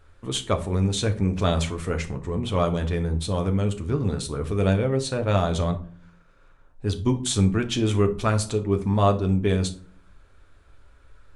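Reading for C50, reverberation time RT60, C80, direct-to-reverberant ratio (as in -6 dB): 14.0 dB, 0.50 s, 19.5 dB, 5.0 dB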